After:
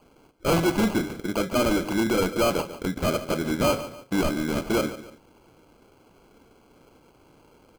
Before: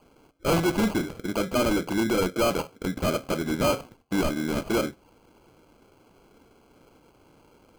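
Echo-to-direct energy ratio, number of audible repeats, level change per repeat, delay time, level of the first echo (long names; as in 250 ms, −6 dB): −13.5 dB, 2, −8.0 dB, 144 ms, −14.0 dB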